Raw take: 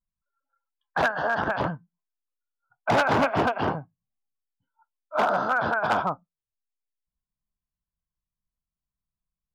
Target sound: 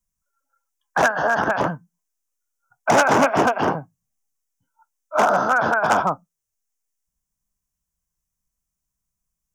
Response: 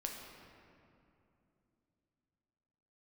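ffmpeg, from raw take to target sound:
-filter_complex "[0:a]highshelf=f=5.1k:t=q:w=3:g=6,acrossover=split=150|860[a][b][c];[a]acompressor=threshold=-47dB:ratio=6[d];[d][b][c]amix=inputs=3:normalize=0,volume=6dB"

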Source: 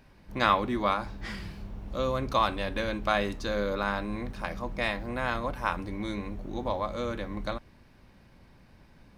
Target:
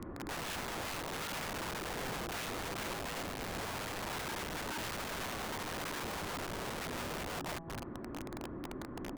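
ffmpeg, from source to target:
-filter_complex "[0:a]aecho=1:1:211:0.0794,asplit=3[a][b][c];[a]afade=t=out:st=3.59:d=0.02[d];[b]afreqshift=-210,afade=t=in:st=3.59:d=0.02,afade=t=out:st=6:d=0.02[e];[c]afade=t=in:st=6:d=0.02[f];[d][e][f]amix=inputs=3:normalize=0,bandreject=f=162.8:t=h:w=4,bandreject=f=325.6:t=h:w=4,bandreject=f=488.4:t=h:w=4,bandreject=f=651.2:t=h:w=4,bandreject=f=814:t=h:w=4,bandreject=f=976.8:t=h:w=4,bandreject=f=1.1396k:t=h:w=4,bandreject=f=1.3024k:t=h:w=4,bandreject=f=1.4652k:t=h:w=4,bandreject=f=1.628k:t=h:w=4,bandreject=f=1.7908k:t=h:w=4,bandreject=f=1.9536k:t=h:w=4,bandreject=f=2.1164k:t=h:w=4,bandreject=f=2.2792k:t=h:w=4,bandreject=f=2.442k:t=h:w=4,bandreject=f=2.6048k:t=h:w=4,bandreject=f=2.7676k:t=h:w=4,bandreject=f=2.9304k:t=h:w=4,bandreject=f=3.0932k:t=h:w=4,bandreject=f=3.256k:t=h:w=4,bandreject=f=3.4188k:t=h:w=4,bandreject=f=3.5816k:t=h:w=4,bandreject=f=3.7444k:t=h:w=4,bandreject=f=3.9072k:t=h:w=4,bandreject=f=4.07k:t=h:w=4,bandreject=f=4.2328k:t=h:w=4,bandreject=f=4.3956k:t=h:w=4,bandreject=f=4.5584k:t=h:w=4,bandreject=f=4.7212k:t=h:w=4,asoftclip=type=tanh:threshold=-25dB,highpass=f=110:w=0.5412,highpass=f=110:w=1.3066,acompressor=threshold=-44dB:ratio=12,lowpass=f=1.7k:w=0.5412,lowpass=f=1.7k:w=1.3066,alimiter=level_in=19dB:limit=-24dB:level=0:latency=1:release=181,volume=-19dB,afreqshift=-480,lowshelf=f=160:g=3,aeval=exprs='(mod(335*val(0)+1,2)-1)/335':c=same,volume=15.5dB"

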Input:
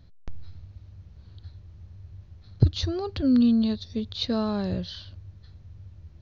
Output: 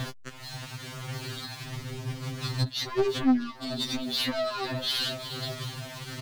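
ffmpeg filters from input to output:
-filter_complex "[0:a]flanger=delay=0.1:depth=1.1:regen=-10:speed=0.94:shape=sinusoidal,acompressor=mode=upward:threshold=-27dB:ratio=2.5,aecho=1:1:364|728|1092|1456:0.1|0.056|0.0314|0.0176,acrusher=bits=9:mix=0:aa=0.000001,acompressor=threshold=-38dB:ratio=12,asettb=1/sr,asplit=3[a][b][c];[a]atrim=end=1.654[d];[b]atrim=start=1.65:end=3.91,asetpts=PTS-STARTPTS,afade=t=in:d=0.004:c=qsin,afade=t=out:st=2.256:d=0.004:c=qsin,equalizer=f=150:w=0.56:g=7[e];[c]atrim=start=3.906[f];[d][e]acrossfade=d=0.004:c1=hsin:c2=qsin[g];[g][f]acrossfade=d=0.004:c1=qsin:c2=hsin,asplit=2[h][i];[i]highpass=f=720:p=1,volume=46dB,asoftclip=type=tanh:threshold=-6.5dB[j];[h][j]amix=inputs=2:normalize=0,lowpass=f=4.3k:p=1,volume=-6dB,equalizer=f=470:w=0.59:g=-2.5,afftfilt=real='re*2.45*eq(mod(b,6),0)':imag='im*2.45*eq(mod(b,6),0)':win_size=2048:overlap=0.75,volume=-8.5dB"

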